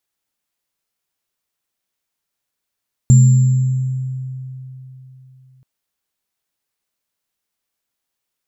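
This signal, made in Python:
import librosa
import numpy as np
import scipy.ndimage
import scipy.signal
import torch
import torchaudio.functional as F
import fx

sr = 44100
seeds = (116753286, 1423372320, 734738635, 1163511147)

y = fx.additive_free(sr, length_s=2.53, hz=130.0, level_db=-4.0, upper_db=(-14.0, -17.5), decay_s=3.49, upper_decays_s=(1.73, 1.4), upper_hz=(219.0, 7330.0))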